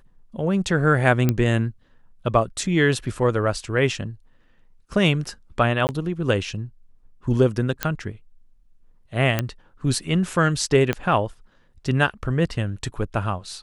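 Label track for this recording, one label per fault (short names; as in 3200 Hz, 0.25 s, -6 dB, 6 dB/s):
1.290000	1.290000	pop -7 dBFS
5.870000	5.890000	gap 19 ms
7.830000	7.830000	pop -5 dBFS
9.390000	9.390000	pop -7 dBFS
10.930000	10.930000	pop -10 dBFS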